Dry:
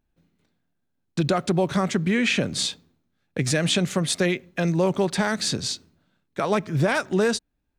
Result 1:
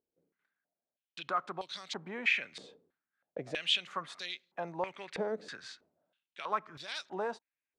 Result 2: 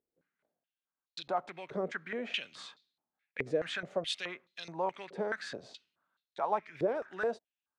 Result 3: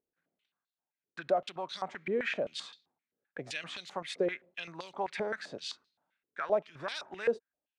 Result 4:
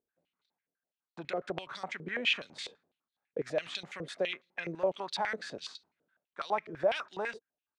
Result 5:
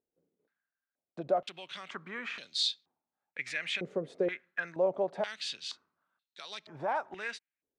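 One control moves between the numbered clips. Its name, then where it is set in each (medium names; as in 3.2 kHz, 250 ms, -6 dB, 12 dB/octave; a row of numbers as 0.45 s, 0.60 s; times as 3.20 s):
step-sequenced band-pass, rate: 3.1 Hz, 4.7 Hz, 7.7 Hz, 12 Hz, 2.1 Hz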